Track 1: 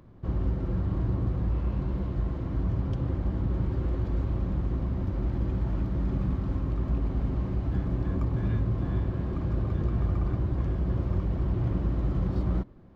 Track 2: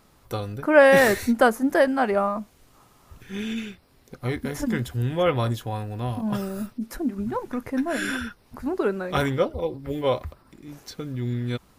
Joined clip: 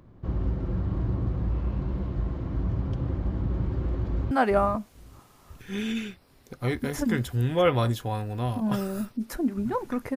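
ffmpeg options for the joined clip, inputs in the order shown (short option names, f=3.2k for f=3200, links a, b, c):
-filter_complex "[0:a]apad=whole_dur=10.16,atrim=end=10.16,atrim=end=4.312[a];[1:a]atrim=start=1.918:end=7.77[b];[a][b]acrossfade=d=0.004:c1=hsin:c2=hsin,asplit=2[c][d];[d]afade=t=in:st=4.06:d=0.01,afade=t=out:st=4.31:d=0.01,aecho=0:1:440|880|1320:0.501187|0.0751781|0.0112767[e];[c][e]amix=inputs=2:normalize=0"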